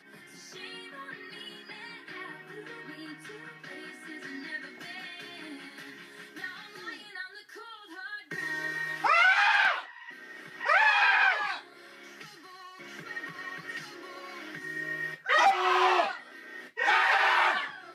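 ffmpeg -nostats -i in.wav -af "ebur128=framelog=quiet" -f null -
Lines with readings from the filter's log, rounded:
Integrated loudness:
  I:         -25.8 LUFS
  Threshold: -39.6 LUFS
Loudness range:
  LRA:        17.9 LU
  Threshold: -49.9 LUFS
  LRA low:   -42.6 LUFS
  LRA high:  -24.7 LUFS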